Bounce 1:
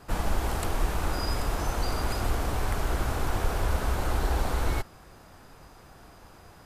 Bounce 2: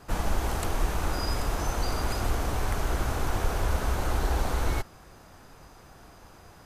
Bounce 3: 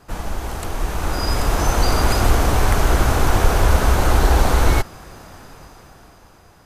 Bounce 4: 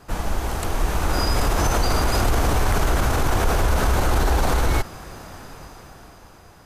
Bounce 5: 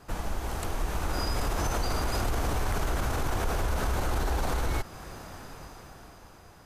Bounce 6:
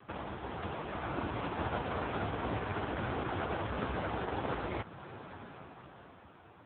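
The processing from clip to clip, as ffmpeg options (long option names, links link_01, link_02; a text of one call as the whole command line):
ffmpeg -i in.wav -af "equalizer=frequency=6200:width=6.9:gain=4" out.wav
ffmpeg -i in.wav -af "dynaudnorm=framelen=200:gausssize=13:maxgain=13dB,volume=1dB" out.wav
ffmpeg -i in.wav -af "alimiter=limit=-12.5dB:level=0:latency=1:release=36,volume=1.5dB" out.wav
ffmpeg -i in.wav -af "acompressor=threshold=-28dB:ratio=1.5,volume=-4.5dB" out.wav
ffmpeg -i in.wav -ar 8000 -c:a libopencore_amrnb -b:a 5900 out.amr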